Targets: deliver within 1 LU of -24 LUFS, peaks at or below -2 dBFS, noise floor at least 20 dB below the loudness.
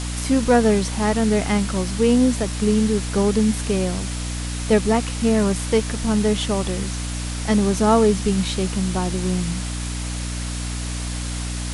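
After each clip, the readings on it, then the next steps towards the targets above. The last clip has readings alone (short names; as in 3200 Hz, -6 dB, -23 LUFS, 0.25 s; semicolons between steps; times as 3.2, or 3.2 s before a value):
hum 60 Hz; harmonics up to 300 Hz; hum level -25 dBFS; noise floor -27 dBFS; noise floor target -41 dBFS; loudness -21.0 LUFS; peak -3.5 dBFS; loudness target -24.0 LUFS
-> notches 60/120/180/240/300 Hz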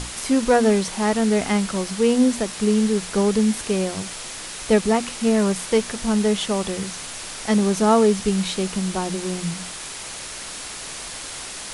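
hum none; noise floor -34 dBFS; noise floor target -42 dBFS
-> noise print and reduce 8 dB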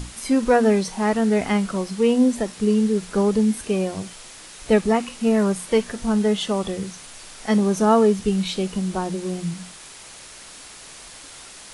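noise floor -42 dBFS; loudness -21.0 LUFS; peak -5.5 dBFS; loudness target -24.0 LUFS
-> gain -3 dB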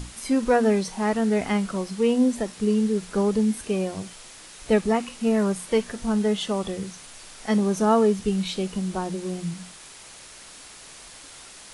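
loudness -24.0 LUFS; peak -8.5 dBFS; noise floor -45 dBFS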